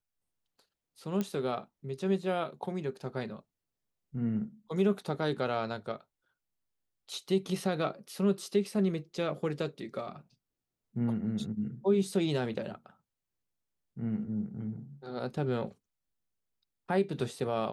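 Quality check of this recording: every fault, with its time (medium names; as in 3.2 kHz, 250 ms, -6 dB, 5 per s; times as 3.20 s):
1.21 s: pop -19 dBFS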